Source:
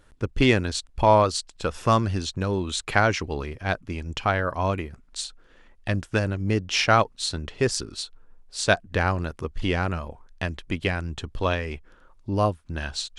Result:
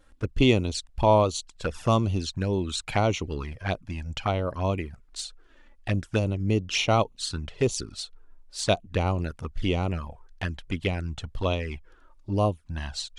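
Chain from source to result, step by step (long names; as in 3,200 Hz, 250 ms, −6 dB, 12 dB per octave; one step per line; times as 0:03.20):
flanger swept by the level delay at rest 3.9 ms, full sweep at −20.5 dBFS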